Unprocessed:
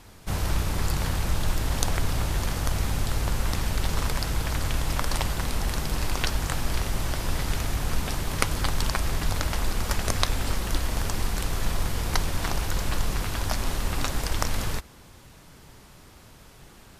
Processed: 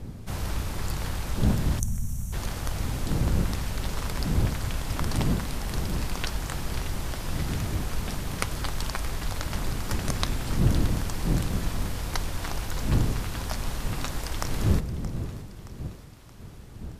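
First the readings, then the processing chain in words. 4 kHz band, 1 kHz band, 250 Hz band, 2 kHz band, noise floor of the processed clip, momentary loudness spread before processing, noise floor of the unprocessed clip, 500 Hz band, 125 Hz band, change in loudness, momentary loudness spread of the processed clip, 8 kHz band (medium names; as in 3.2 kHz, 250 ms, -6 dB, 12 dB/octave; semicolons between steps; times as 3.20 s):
-4.5 dB, -4.0 dB, +3.0 dB, -4.5 dB, -43 dBFS, 2 LU, -50 dBFS, -2.0 dB, +1.0 dB, -1.5 dB, 8 LU, -4.5 dB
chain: wind noise 150 Hz -26 dBFS; two-band feedback delay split 340 Hz, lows 228 ms, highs 623 ms, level -15 dB; time-frequency box 1.79–2.33 s, 250–5500 Hz -20 dB; trim -4.5 dB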